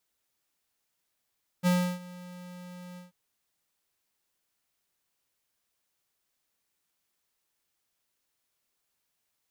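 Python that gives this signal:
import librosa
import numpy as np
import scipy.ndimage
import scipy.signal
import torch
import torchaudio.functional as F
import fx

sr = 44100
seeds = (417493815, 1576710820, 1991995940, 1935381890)

y = fx.adsr_tone(sr, wave='square', hz=179.0, attack_ms=37.0, decay_ms=320.0, sustain_db=-22.0, held_s=1.34, release_ms=146.0, level_db=-22.5)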